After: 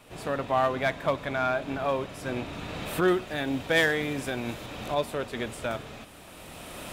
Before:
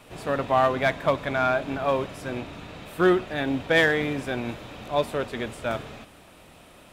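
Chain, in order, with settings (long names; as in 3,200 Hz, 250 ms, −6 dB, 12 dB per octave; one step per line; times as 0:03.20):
camcorder AGC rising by 13 dB per second
high-shelf EQ 5,500 Hz +2.5 dB, from 0:03.08 +10.5 dB, from 0:04.66 +5 dB
level −4 dB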